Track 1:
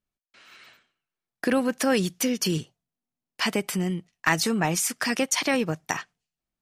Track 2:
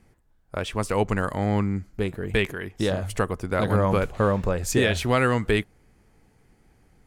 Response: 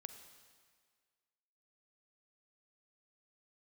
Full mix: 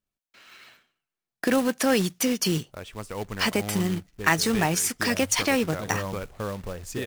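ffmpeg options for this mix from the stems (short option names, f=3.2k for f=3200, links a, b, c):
-filter_complex "[0:a]volume=0.5dB[a];[1:a]adelay=2200,volume=-10.5dB[b];[a][b]amix=inputs=2:normalize=0,acrusher=bits=3:mode=log:mix=0:aa=0.000001"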